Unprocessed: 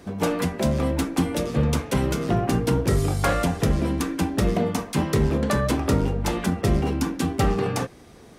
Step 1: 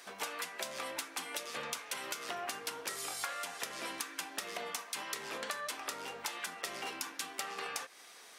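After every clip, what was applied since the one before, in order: Bessel high-pass 1.6 kHz, order 2; compression 12:1, threshold -39 dBFS, peak gain reduction 15 dB; trim +3 dB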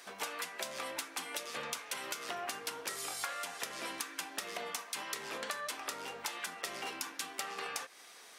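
no audible change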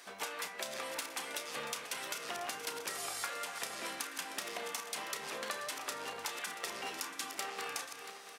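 backward echo that repeats 341 ms, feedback 55%, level -8.5 dB; doubling 32 ms -11 dB; trim -1 dB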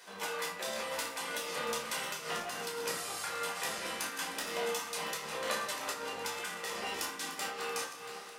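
simulated room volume 670 m³, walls furnished, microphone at 4.9 m; random flutter of the level, depth 60%

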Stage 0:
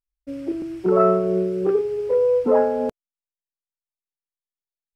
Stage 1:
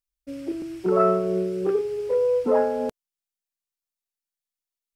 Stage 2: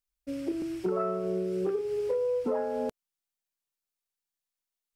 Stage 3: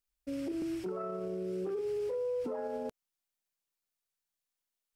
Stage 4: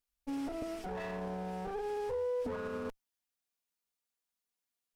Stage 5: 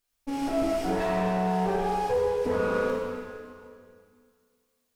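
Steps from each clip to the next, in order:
treble shelf 2.5 kHz +8.5 dB; trim -3.5 dB
compression, threshold -27 dBFS, peak gain reduction 12 dB
peak limiter -30 dBFS, peak gain reduction 11 dB
comb filter that takes the minimum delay 4.2 ms
plate-style reverb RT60 2.2 s, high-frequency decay 0.95×, DRR -4.5 dB; trim +6.5 dB

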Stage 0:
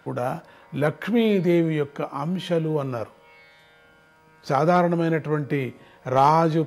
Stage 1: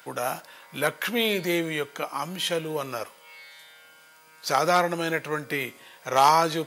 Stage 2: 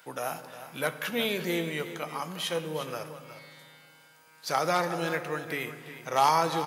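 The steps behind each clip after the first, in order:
tilt EQ +4.5 dB/octave
delay 358 ms -12.5 dB; reverberation RT60 2.2 s, pre-delay 3 ms, DRR 10.5 dB; trim -5 dB

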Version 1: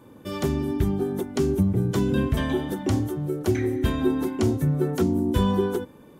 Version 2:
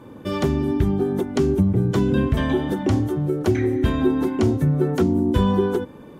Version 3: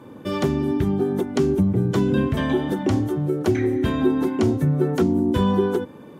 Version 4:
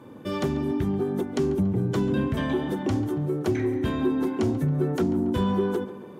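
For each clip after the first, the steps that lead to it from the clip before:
low-pass 3.7 kHz 6 dB/octave; in parallel at +2.5 dB: compression, threshold -28 dBFS, peak gain reduction 11.5 dB
high-pass 100 Hz
tape echo 139 ms, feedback 65%, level -14.5 dB, low-pass 3 kHz; in parallel at -4 dB: saturation -19.5 dBFS, distortion -11 dB; on the sum: trim -7.5 dB

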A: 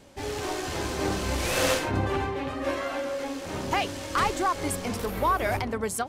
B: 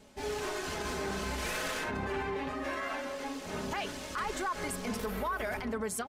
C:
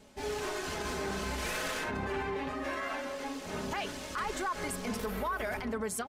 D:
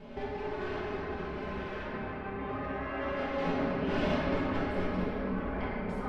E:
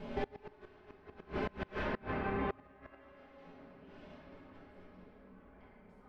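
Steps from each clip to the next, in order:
comb 4.7 ms, depth 58%; dynamic bell 1.6 kHz, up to +6 dB, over -40 dBFS, Q 1.5; peak limiter -20.5 dBFS, peak gain reduction 11 dB; trim -5.5 dB
no audible change
compressor with a negative ratio -41 dBFS, ratio -0.5; distance through air 350 m; reverberation RT60 4.3 s, pre-delay 5 ms, DRR -8.5 dB
inverted gate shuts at -27 dBFS, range -27 dB; trim +2.5 dB

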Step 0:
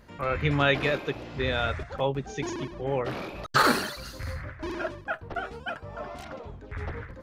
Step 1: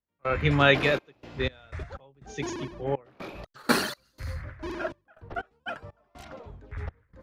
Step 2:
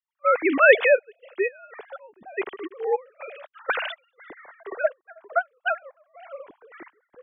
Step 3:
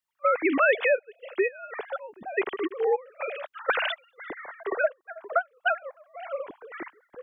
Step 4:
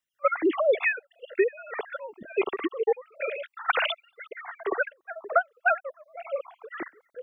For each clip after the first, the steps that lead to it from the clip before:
trance gate ".xxx.x.x" 61 bpm -24 dB; three bands expanded up and down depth 40%
formants replaced by sine waves; trim +4.5 dB
compression 3:1, threshold -29 dBFS, peak gain reduction 15.5 dB; trim +6 dB
random holes in the spectrogram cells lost 37%; trim +2.5 dB

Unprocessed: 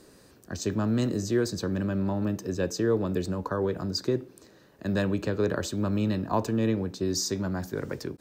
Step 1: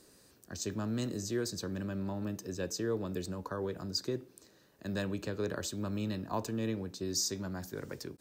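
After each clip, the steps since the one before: treble shelf 3.3 kHz +8.5 dB; trim -9 dB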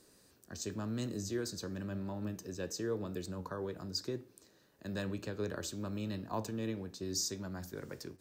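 flange 0.95 Hz, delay 8.2 ms, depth 5.5 ms, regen +84%; trim +1.5 dB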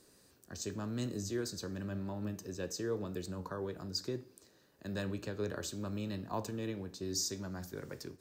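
reverberation, pre-delay 3 ms, DRR 16.5 dB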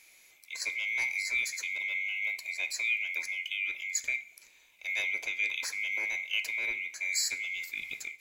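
split-band scrambler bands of 2 kHz; trim +5.5 dB

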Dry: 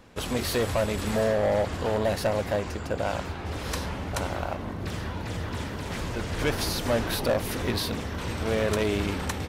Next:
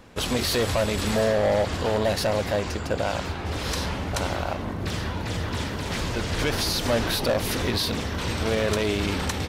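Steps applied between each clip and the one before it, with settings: dynamic bell 4.4 kHz, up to +5 dB, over -47 dBFS, Q 0.86; peak limiter -19.5 dBFS, peak gain reduction 5 dB; trim +3.5 dB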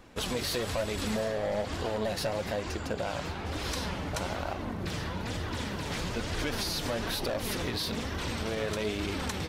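compression, threshold -24 dBFS, peak gain reduction 5.5 dB; flange 1.1 Hz, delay 2.4 ms, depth 4.7 ms, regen +55%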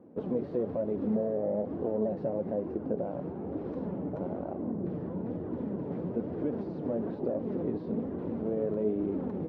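Butterworth band-pass 290 Hz, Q 0.8; trim +4.5 dB

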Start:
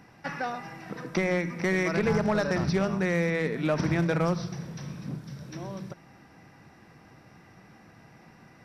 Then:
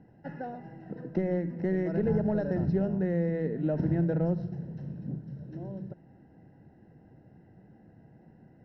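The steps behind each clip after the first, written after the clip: boxcar filter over 38 samples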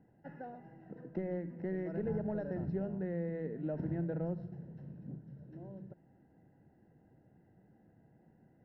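tone controls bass -2 dB, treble -12 dB; trim -8 dB

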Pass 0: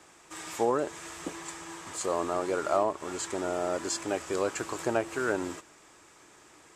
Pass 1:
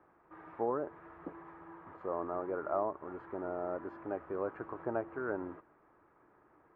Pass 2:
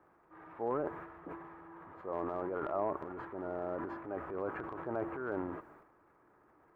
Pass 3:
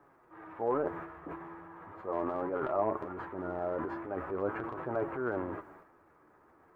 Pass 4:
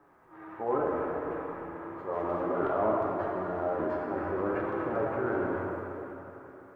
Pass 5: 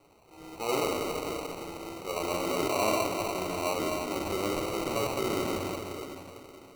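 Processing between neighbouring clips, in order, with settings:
low-pass 1.5 kHz 24 dB/octave; trim -7 dB
transient shaper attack -4 dB, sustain +10 dB; trim -1 dB
flange 0.4 Hz, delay 6.9 ms, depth 6.4 ms, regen +40%; trim +7.5 dB
plate-style reverb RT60 3.5 s, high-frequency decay 0.85×, DRR -2.5 dB
sample-and-hold 26×

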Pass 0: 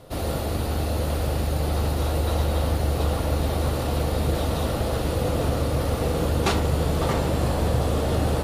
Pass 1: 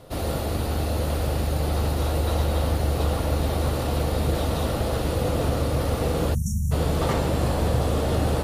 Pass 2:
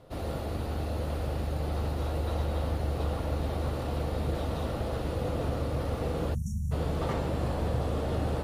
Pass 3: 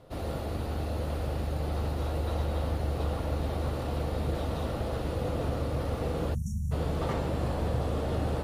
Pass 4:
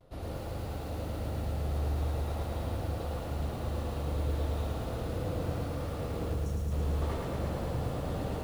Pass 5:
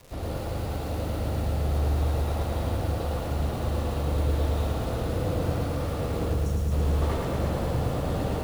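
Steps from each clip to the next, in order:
spectral selection erased 6.34–6.72 s, 230–5500 Hz
treble shelf 4.7 kHz -9.5 dB; trim -7 dB
no audible change
vibrato 0.41 Hz 30 cents; bass shelf 84 Hz +6.5 dB; bit-crushed delay 110 ms, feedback 80%, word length 8-bit, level -3.5 dB; trim -7 dB
crackle 510 per s -47 dBFS; trim +6.5 dB

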